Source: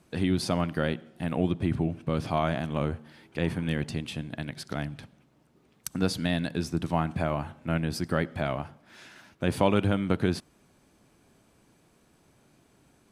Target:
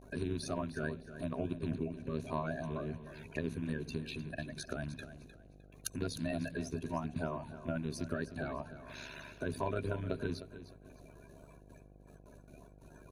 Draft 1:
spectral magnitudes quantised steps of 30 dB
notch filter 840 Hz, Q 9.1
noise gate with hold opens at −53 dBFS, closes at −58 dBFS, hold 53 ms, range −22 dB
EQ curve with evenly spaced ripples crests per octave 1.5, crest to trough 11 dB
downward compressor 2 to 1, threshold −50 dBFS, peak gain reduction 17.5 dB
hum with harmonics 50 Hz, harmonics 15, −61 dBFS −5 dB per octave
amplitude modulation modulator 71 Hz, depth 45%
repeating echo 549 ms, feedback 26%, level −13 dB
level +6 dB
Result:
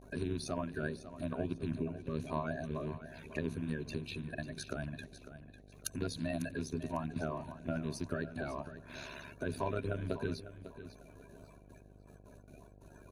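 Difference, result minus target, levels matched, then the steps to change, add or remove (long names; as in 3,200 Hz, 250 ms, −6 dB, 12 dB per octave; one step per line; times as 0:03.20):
echo 243 ms late
change: repeating echo 306 ms, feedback 26%, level −13 dB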